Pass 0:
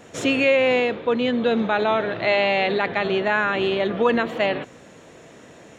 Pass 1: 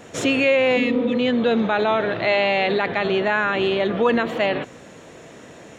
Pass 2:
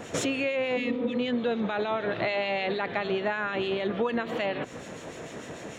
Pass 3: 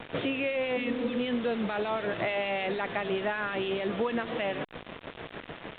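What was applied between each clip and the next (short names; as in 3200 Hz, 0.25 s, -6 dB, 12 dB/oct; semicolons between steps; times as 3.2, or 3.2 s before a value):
spectral repair 0.79–1.15, 230–1700 Hz after; in parallel at -1.5 dB: limiter -18 dBFS, peak gain reduction 10.5 dB; on the sum: gain -2 dB
compressor 5:1, threshold -29 dBFS, peak gain reduction 13.5 dB; harmonic tremolo 6.7 Hz, depth 50%, crossover 2000 Hz; gain +4.5 dB
requantised 6-bit, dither none; gain -2 dB; A-law 64 kbps 8000 Hz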